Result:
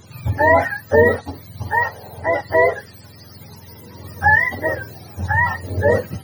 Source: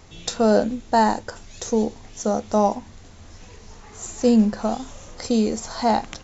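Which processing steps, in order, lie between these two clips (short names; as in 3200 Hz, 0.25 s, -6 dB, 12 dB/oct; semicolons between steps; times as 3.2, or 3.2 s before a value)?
spectrum mirrored in octaves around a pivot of 640 Hz; 1.77–2.25 band noise 400–880 Hz -46 dBFS; gain +5.5 dB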